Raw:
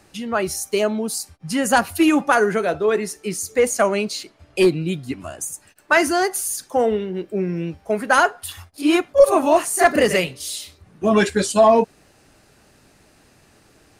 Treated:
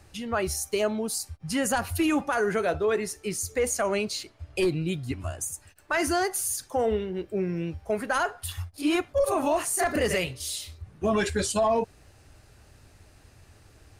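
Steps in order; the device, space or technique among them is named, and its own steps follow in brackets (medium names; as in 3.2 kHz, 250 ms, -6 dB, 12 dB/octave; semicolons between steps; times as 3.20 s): car stereo with a boomy subwoofer (resonant low shelf 130 Hz +10 dB, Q 1.5; peak limiter -12.5 dBFS, peak gain reduction 10 dB); trim -4 dB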